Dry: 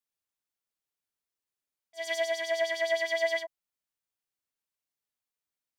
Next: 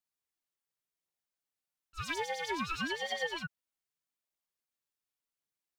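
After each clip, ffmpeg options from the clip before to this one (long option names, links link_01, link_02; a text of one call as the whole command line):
ffmpeg -i in.wav -af "aphaser=in_gain=1:out_gain=1:delay=4.2:decay=0.39:speed=0.92:type=triangular,acompressor=threshold=-29dB:ratio=6,aeval=exprs='val(0)*sin(2*PI*680*n/s+680*0.8/0.64*sin(2*PI*0.64*n/s))':channel_layout=same" out.wav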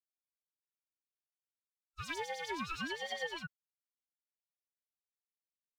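ffmpeg -i in.wav -af "agate=range=-33dB:threshold=-39dB:ratio=3:detection=peak,volume=-4dB" out.wav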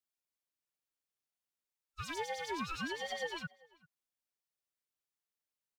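ffmpeg -i in.wav -filter_complex "[0:a]acrossover=split=300|1400|4500[link_01][link_02][link_03][link_04];[link_03]alimiter=level_in=16.5dB:limit=-24dB:level=0:latency=1,volume=-16.5dB[link_05];[link_01][link_02][link_05][link_04]amix=inputs=4:normalize=0,asplit=2[link_06][link_07];[link_07]adelay=390.7,volume=-24dB,highshelf=frequency=4000:gain=-8.79[link_08];[link_06][link_08]amix=inputs=2:normalize=0,volume=1.5dB" out.wav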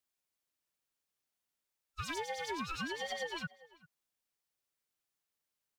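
ffmpeg -i in.wav -af "acompressor=threshold=-39dB:ratio=6,volume=4dB" out.wav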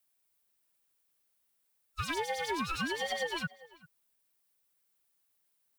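ffmpeg -i in.wav -filter_complex "[0:a]acrossover=split=560|5100[link_01][link_02][link_03];[link_03]alimiter=level_in=20.5dB:limit=-24dB:level=0:latency=1:release=84,volume=-20.5dB[link_04];[link_01][link_02][link_04]amix=inputs=3:normalize=0,aexciter=amount=1.5:drive=7.5:freq=8800,volume=5dB" out.wav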